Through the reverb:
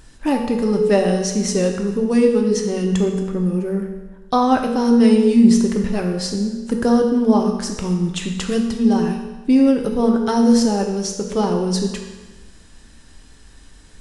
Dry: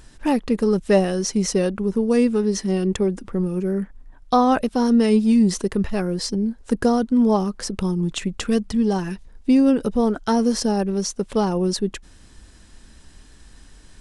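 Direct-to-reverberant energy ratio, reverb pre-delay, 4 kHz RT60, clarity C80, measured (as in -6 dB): 2.0 dB, 4 ms, 1.1 s, 7.0 dB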